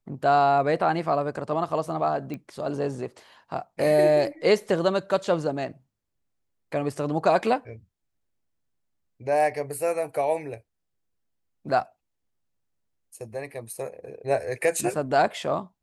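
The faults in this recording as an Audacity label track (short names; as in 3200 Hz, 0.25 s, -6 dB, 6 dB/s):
2.340000	2.340000	pop -22 dBFS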